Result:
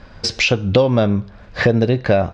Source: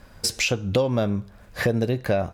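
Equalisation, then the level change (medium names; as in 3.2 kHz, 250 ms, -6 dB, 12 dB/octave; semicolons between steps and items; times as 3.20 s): low-pass 5.2 kHz 24 dB/octave; +7.5 dB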